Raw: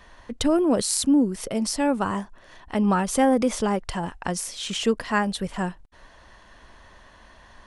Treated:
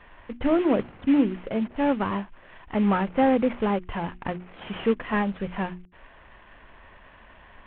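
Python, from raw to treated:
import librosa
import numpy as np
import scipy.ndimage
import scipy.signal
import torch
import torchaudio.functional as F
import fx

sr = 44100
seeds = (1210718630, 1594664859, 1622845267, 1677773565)

y = fx.cvsd(x, sr, bps=16000)
y = fx.hum_notches(y, sr, base_hz=60, count=6)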